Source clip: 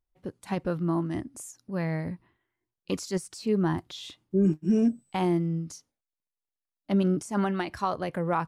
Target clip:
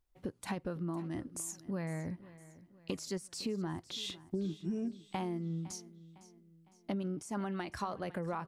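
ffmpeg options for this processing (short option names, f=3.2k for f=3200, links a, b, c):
-af "acompressor=threshold=-39dB:ratio=6,aecho=1:1:507|1014|1521|2028:0.126|0.0567|0.0255|0.0115,volume=3.5dB"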